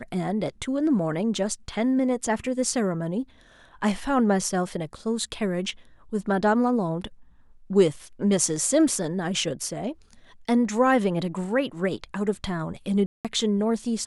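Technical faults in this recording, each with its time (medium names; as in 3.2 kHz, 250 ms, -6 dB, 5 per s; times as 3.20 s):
13.06–13.25 s: dropout 187 ms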